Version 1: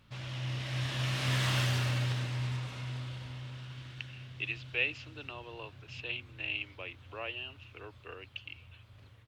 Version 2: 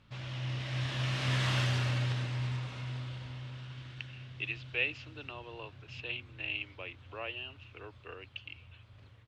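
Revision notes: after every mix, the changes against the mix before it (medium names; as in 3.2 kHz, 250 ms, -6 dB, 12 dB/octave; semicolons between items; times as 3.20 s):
master: add distance through air 53 m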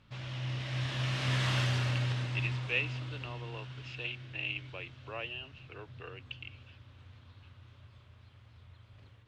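speech: entry -2.05 s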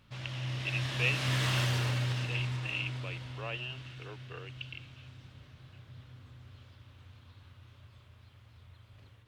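speech: entry -1.70 s; master: remove distance through air 53 m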